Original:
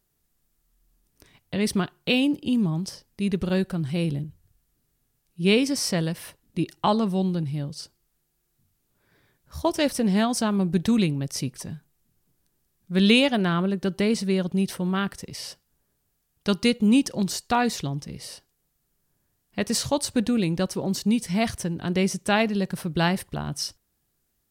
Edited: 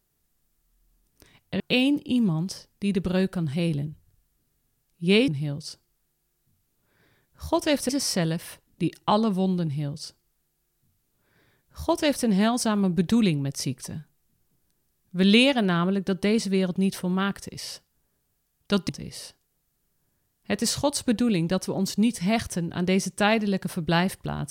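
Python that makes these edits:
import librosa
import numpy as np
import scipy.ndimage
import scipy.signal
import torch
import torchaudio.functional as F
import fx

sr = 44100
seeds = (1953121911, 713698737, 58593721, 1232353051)

y = fx.edit(x, sr, fx.cut(start_s=1.6, length_s=0.37),
    fx.duplicate(start_s=7.4, length_s=2.61, to_s=5.65),
    fx.cut(start_s=16.65, length_s=1.32), tone=tone)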